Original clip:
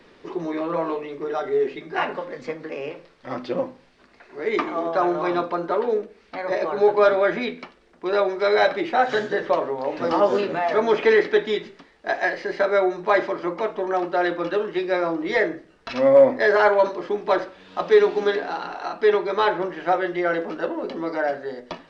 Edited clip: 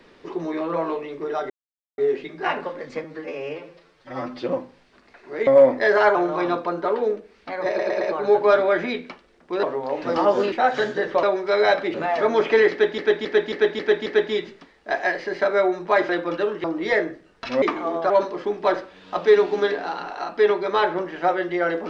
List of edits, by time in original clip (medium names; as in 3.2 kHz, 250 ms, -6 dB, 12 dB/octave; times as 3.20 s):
1.50 s: insert silence 0.48 s
2.56–3.48 s: stretch 1.5×
4.53–5.01 s: swap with 16.06–16.74 s
6.54 s: stutter 0.11 s, 4 plays
8.16–8.87 s: swap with 9.58–10.47 s
11.24–11.51 s: loop, 6 plays
13.27–14.22 s: delete
14.77–15.08 s: delete